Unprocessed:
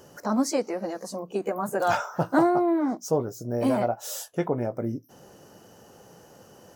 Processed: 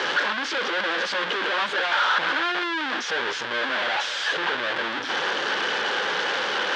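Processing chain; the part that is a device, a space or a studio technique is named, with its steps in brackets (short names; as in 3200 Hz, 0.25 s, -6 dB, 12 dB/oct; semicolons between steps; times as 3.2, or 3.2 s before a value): home computer beeper (infinite clipping; speaker cabinet 590–4200 Hz, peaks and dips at 670 Hz -8 dB, 1600 Hz +9 dB, 3300 Hz +6 dB); gain +5.5 dB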